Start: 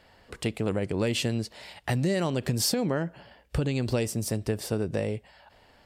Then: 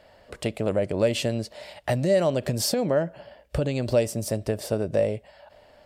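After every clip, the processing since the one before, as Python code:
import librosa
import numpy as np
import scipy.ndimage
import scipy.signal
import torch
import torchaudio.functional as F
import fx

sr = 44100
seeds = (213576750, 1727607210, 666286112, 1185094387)

y = fx.peak_eq(x, sr, hz=600.0, db=13.5, octaves=0.36)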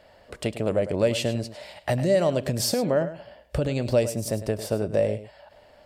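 y = x + 10.0 ** (-13.0 / 20.0) * np.pad(x, (int(103 * sr / 1000.0), 0))[:len(x)]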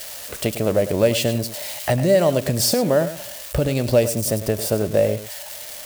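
y = x + 0.5 * 10.0 ** (-27.0 / 20.0) * np.diff(np.sign(x), prepend=np.sign(x[:1]))
y = y * librosa.db_to_amplitude(5.0)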